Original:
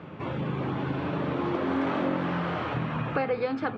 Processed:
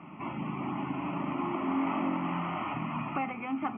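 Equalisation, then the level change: brick-wall FIR low-pass 3400 Hz; resonant low shelf 160 Hz -10.5 dB, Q 1.5; fixed phaser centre 2400 Hz, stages 8; 0.0 dB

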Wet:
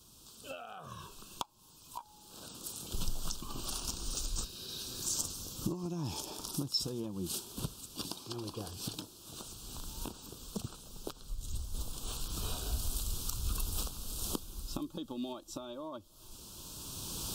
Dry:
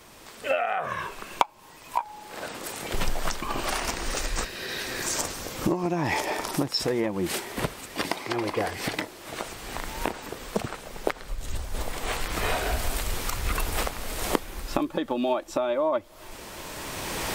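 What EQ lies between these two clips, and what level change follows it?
Butterworth band-stop 2000 Hz, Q 0.99; passive tone stack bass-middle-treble 6-0-2; low shelf 63 Hz -7 dB; +10.0 dB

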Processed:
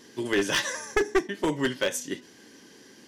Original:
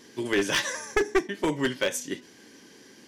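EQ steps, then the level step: notch 2300 Hz, Q 16; 0.0 dB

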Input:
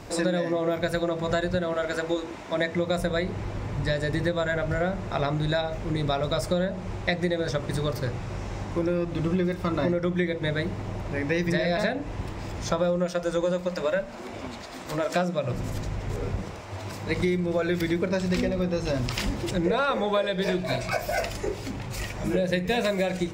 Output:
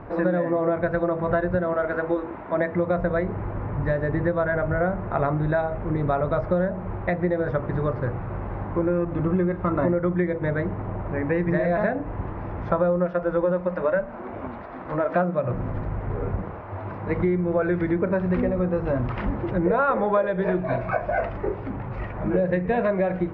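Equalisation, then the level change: ladder low-pass 1800 Hz, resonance 25%; +8.5 dB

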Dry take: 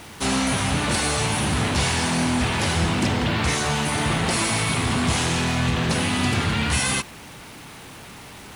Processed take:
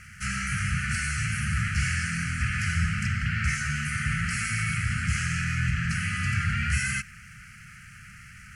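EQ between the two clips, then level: brick-wall FIR band-stop 250–1200 Hz; air absorption 56 m; fixed phaser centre 1000 Hz, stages 6; 0.0 dB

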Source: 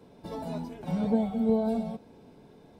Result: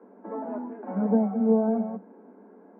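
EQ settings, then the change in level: Chebyshev high-pass 190 Hz, order 10; steep low-pass 1700 Hz 36 dB/oct; +4.0 dB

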